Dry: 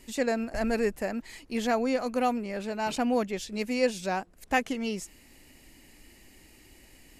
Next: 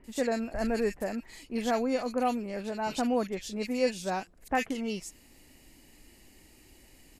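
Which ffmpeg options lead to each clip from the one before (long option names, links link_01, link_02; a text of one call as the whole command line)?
ffmpeg -i in.wav -filter_complex "[0:a]acrossover=split=2000[link_01][link_02];[link_02]adelay=40[link_03];[link_01][link_03]amix=inputs=2:normalize=0,volume=-1.5dB" out.wav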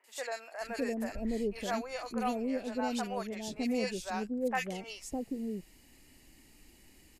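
ffmpeg -i in.wav -filter_complex "[0:a]acrossover=split=570[link_01][link_02];[link_01]adelay=610[link_03];[link_03][link_02]amix=inputs=2:normalize=0,volume=-2.5dB" out.wav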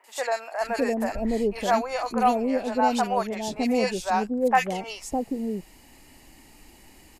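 ffmpeg -i in.wav -af "equalizer=frequency=870:width_type=o:width=1.1:gain=8.5,volume=7dB" out.wav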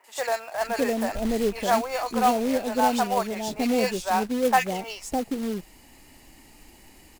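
ffmpeg -i in.wav -af "acrusher=bits=3:mode=log:mix=0:aa=0.000001" out.wav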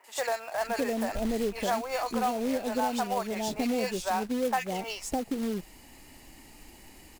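ffmpeg -i in.wav -af "acompressor=threshold=-27dB:ratio=3" out.wav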